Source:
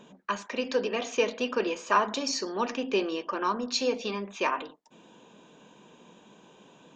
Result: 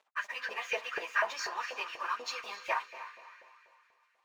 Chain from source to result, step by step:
parametric band 2,000 Hz +11.5 dB 0.56 octaves
dead-zone distortion −47.5 dBFS
feedback delay with all-pass diffusion 461 ms, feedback 43%, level −12.5 dB
time stretch by phase vocoder 0.61×
auto-filter high-pass saw up 4.1 Hz 610–1,800 Hz
level −5 dB

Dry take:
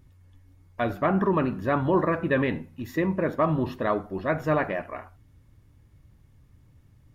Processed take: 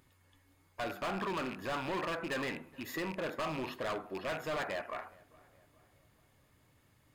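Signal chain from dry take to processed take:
loose part that buzzes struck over −31 dBFS, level −29 dBFS
low-shelf EQ 370 Hz −12 dB
in parallel at +2 dB: downward compressor, threshold −41 dBFS, peak gain reduction 18.5 dB
on the sum: low-shelf EQ 120 Hz −11 dB
hard clipping −29 dBFS, distortion −6 dB
notch filter 5,700 Hz, Q 9.7
on a send: feedback echo with a low-pass in the loop 422 ms, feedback 51%, low-pass 2,400 Hz, level −23 dB
on the sum: level −4 dB

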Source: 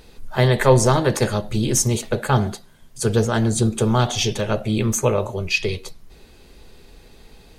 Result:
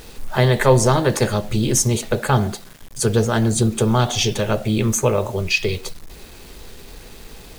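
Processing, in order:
in parallel at +2.5 dB: downward compressor 16 to 1, threshold −28 dBFS, peak gain reduction 21 dB
on the sum: bit reduction 7 bits
level −1 dB

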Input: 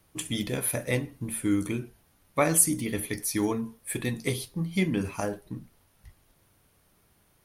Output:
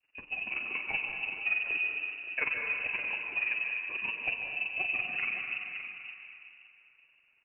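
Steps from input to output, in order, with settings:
downward expander −60 dBFS
parametric band 280 Hz +5 dB 1.1 octaves
in parallel at −7 dB: wave folding −24 dBFS
on the sum: amplitude modulation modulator 21 Hz, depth 60%
on a send: single-tap delay 567 ms −12.5 dB
on the sum: dense smooth reverb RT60 2.9 s, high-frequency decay 0.6×, pre-delay 115 ms, DRR 1.5 dB
voice inversion scrambler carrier 2,800 Hz
level −7.5 dB

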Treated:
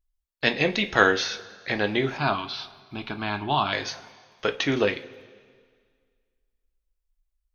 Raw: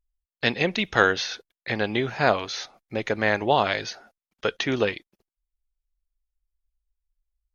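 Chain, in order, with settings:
0:02.17–0:03.73: phaser with its sweep stopped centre 1,900 Hz, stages 6
coupled-rooms reverb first 0.24 s, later 1.9 s, from −18 dB, DRR 6 dB

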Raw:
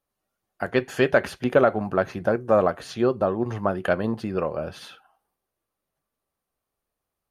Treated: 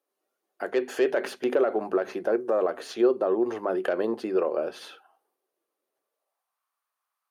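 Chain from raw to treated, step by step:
stylus tracing distortion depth 0.035 ms
parametric band 140 Hz −4 dB 0.55 octaves
mains-hum notches 50/100/150/200/250 Hz
brickwall limiter −17 dBFS, peak gain reduction 11 dB
high-pass filter sweep 370 Hz → 1,100 Hz, 0:05.96–0:06.61
level −1.5 dB

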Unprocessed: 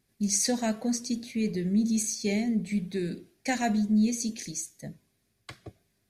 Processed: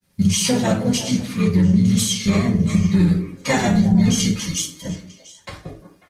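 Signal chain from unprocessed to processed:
high-shelf EQ 8,800 Hz +4 dB
echo through a band-pass that steps 175 ms, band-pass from 310 Hz, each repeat 1.4 octaves, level −9 dB
granular cloud, spray 19 ms, pitch spread up and down by 0 semitones
pitch-shifted copies added −12 semitones −3 dB, −3 semitones −8 dB
convolution reverb RT60 0.45 s, pre-delay 3 ms, DRR −4 dB
boost into a limiter +12 dB
level −6.5 dB
Opus 20 kbit/s 48,000 Hz

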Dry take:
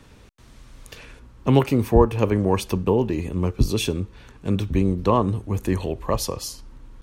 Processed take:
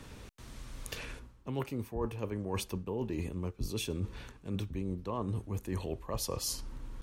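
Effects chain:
parametric band 14,000 Hz +3.5 dB 1.4 octaves
reversed playback
downward compressor 12 to 1, threshold −32 dBFS, peak gain reduction 23 dB
reversed playback

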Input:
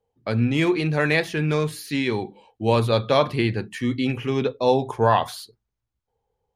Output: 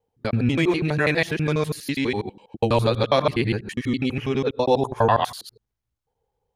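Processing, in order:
reversed piece by piece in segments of 82 ms

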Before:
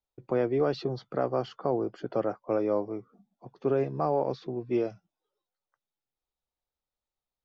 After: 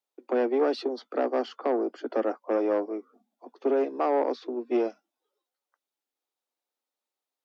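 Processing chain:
tube saturation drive 20 dB, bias 0.5
Butterworth high-pass 230 Hz 96 dB per octave
level +5 dB

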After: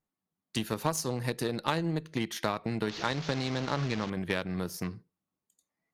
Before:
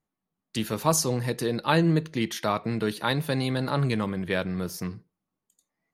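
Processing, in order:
0:02.89–0:04.10: linear delta modulator 32 kbit/s, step −27.5 dBFS
downward compressor 5 to 1, threshold −27 dBFS, peak gain reduction 10.5 dB
harmonic generator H 7 −23 dB, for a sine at −13.5 dBFS
level +2 dB

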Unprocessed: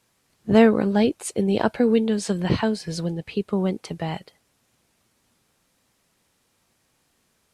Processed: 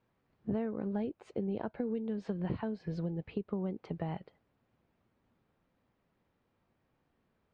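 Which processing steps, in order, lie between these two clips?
downward compressor 8 to 1, threshold −27 dBFS, peak gain reduction 17 dB
head-to-tape spacing loss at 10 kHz 43 dB
level −3.5 dB

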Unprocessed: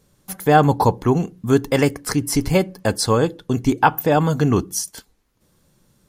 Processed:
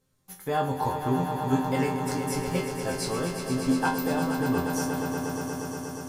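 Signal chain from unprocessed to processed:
resonators tuned to a chord F2 fifth, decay 0.33 s
0:04.22–0:04.66: Chebyshev low-pass filter 3,000 Hz, order 10
echo that builds up and dies away 119 ms, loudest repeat 5, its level −9.5 dB

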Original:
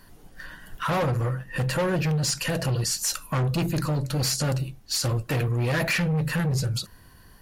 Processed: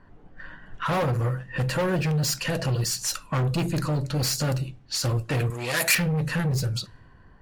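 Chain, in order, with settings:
0:05.50–0:05.95: RIAA equalisation recording
bad sample-rate conversion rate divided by 2×, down none, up hold
on a send at −19 dB: convolution reverb RT60 0.30 s, pre-delay 7 ms
on the sum: low-pass that shuts in the quiet parts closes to 1,500 Hz, open at −21.5 dBFS

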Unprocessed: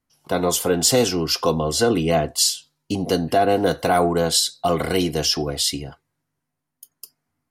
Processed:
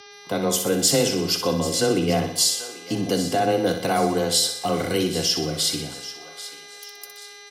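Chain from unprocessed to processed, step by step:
hum with harmonics 400 Hz, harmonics 15, −44 dBFS −2 dB per octave
feedback echo with a high-pass in the loop 787 ms, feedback 44%, high-pass 900 Hz, level −14 dB
dynamic equaliser 910 Hz, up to −5 dB, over −33 dBFS, Q 0.87
repeating echo 62 ms, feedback 54%, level −8.5 dB
frequency shifter +15 Hz
level −1.5 dB

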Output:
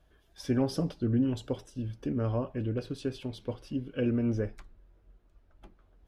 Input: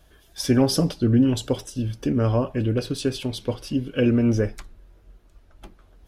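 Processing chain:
high-shelf EQ 3,900 Hz −11 dB
level −9 dB

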